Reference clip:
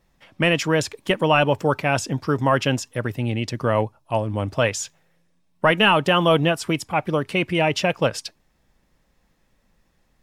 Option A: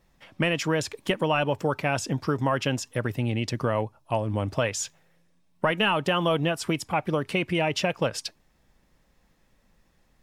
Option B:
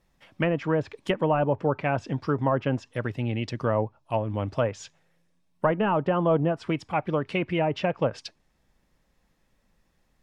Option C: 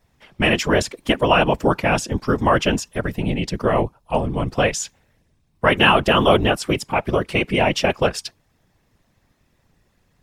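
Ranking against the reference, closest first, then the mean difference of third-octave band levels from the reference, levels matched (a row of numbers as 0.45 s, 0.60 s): A, C, B; 2.0 dB, 3.0 dB, 4.5 dB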